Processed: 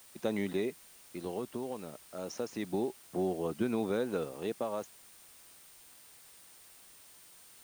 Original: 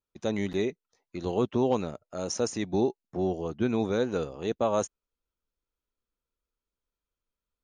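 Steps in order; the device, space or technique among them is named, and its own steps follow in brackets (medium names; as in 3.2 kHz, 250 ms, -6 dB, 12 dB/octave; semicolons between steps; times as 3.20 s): medium wave at night (band-pass 150–4100 Hz; compression, threshold -27 dBFS, peak gain reduction 7.5 dB; tremolo 0.28 Hz, depth 58%; whistle 9 kHz -61 dBFS; white noise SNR 20 dB)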